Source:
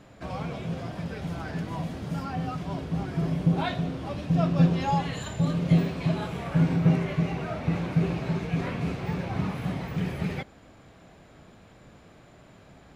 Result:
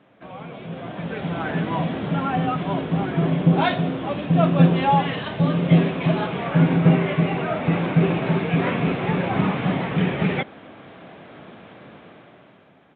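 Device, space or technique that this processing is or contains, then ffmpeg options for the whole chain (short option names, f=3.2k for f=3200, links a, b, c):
Bluetooth headset: -af "highpass=180,dynaudnorm=f=190:g=11:m=14dB,aresample=8000,aresample=44100,volume=-2.5dB" -ar 16000 -c:a sbc -b:a 64k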